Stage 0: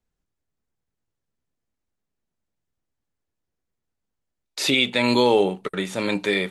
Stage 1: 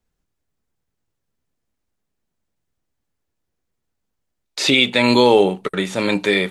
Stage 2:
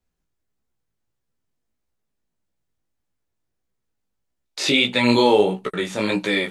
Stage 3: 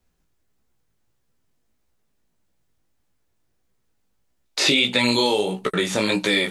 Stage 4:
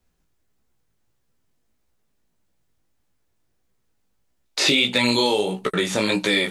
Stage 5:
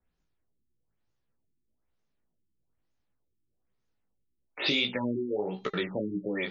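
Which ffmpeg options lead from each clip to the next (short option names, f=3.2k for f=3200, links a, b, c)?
-filter_complex "[0:a]acrossover=split=8600[a][b];[b]acompressor=threshold=-49dB:ratio=4:attack=1:release=60[c];[a][c]amix=inputs=2:normalize=0,volume=5dB"
-af "flanger=delay=15.5:depth=4.6:speed=1.6"
-filter_complex "[0:a]acrossover=split=3600[a][b];[a]acompressor=threshold=-27dB:ratio=6[c];[b]alimiter=limit=-23.5dB:level=0:latency=1:release=39[d];[c][d]amix=inputs=2:normalize=0,volume=8dB"
-af "asoftclip=type=hard:threshold=-9dB"
-af "bandreject=f=402.7:t=h:w=4,bandreject=f=805.4:t=h:w=4,bandreject=f=1.2081k:t=h:w=4,bandreject=f=1.6108k:t=h:w=4,bandreject=f=2.0135k:t=h:w=4,bandreject=f=2.4162k:t=h:w=4,bandreject=f=2.8189k:t=h:w=4,bandreject=f=3.2216k:t=h:w=4,bandreject=f=3.6243k:t=h:w=4,bandreject=f=4.027k:t=h:w=4,bandreject=f=4.4297k:t=h:w=4,bandreject=f=4.8324k:t=h:w=4,bandreject=f=5.2351k:t=h:w=4,bandreject=f=5.6378k:t=h:w=4,bandreject=f=6.0405k:t=h:w=4,bandreject=f=6.4432k:t=h:w=4,bandreject=f=6.8459k:t=h:w=4,bandreject=f=7.2486k:t=h:w=4,bandreject=f=7.6513k:t=h:w=4,bandreject=f=8.054k:t=h:w=4,bandreject=f=8.4567k:t=h:w=4,bandreject=f=8.8594k:t=h:w=4,bandreject=f=9.2621k:t=h:w=4,bandreject=f=9.6648k:t=h:w=4,bandreject=f=10.0675k:t=h:w=4,bandreject=f=10.4702k:t=h:w=4,bandreject=f=10.8729k:t=h:w=4,bandreject=f=11.2756k:t=h:w=4,afftfilt=real='re*lt(b*sr/1024,400*pow(7200/400,0.5+0.5*sin(2*PI*1.1*pts/sr)))':imag='im*lt(b*sr/1024,400*pow(7200/400,0.5+0.5*sin(2*PI*1.1*pts/sr)))':win_size=1024:overlap=0.75,volume=-8.5dB"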